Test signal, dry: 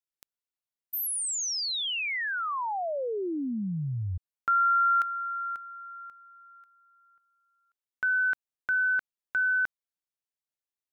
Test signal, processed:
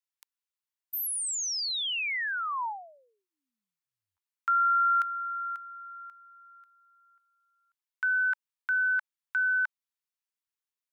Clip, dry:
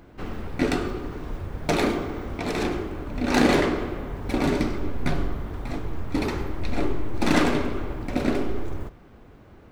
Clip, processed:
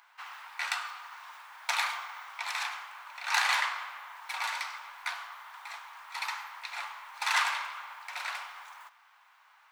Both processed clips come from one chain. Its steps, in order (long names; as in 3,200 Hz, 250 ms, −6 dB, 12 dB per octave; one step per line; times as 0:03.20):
elliptic high-pass filter 910 Hz, stop band 60 dB